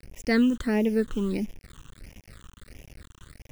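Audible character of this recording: a quantiser's noise floor 8-bit, dither none; phasing stages 8, 1.5 Hz, lowest notch 630–1300 Hz

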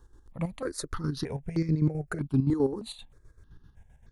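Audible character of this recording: chopped level 7.7 Hz, depth 60%, duty 50%; notches that jump at a steady rate 3.2 Hz 640–2800 Hz

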